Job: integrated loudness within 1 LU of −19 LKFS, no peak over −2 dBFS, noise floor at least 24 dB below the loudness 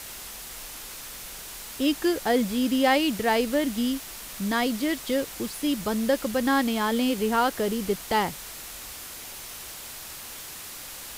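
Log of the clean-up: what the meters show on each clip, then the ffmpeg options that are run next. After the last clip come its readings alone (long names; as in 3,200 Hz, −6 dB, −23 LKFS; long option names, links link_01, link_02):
background noise floor −40 dBFS; target noise floor −51 dBFS; integrated loudness −27.0 LKFS; sample peak −10.0 dBFS; target loudness −19.0 LKFS
→ -af "afftdn=noise_reduction=11:noise_floor=-40"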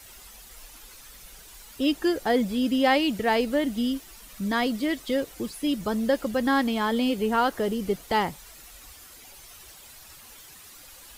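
background noise floor −48 dBFS; target noise floor −50 dBFS
→ -af "afftdn=noise_reduction=6:noise_floor=-48"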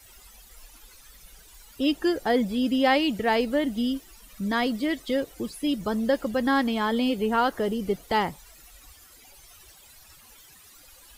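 background noise floor −52 dBFS; integrated loudness −25.5 LKFS; sample peak −10.5 dBFS; target loudness −19.0 LKFS
→ -af "volume=6.5dB"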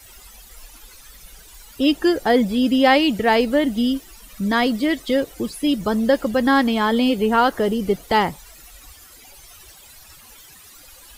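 integrated loudness −19.0 LKFS; sample peak −4.0 dBFS; background noise floor −46 dBFS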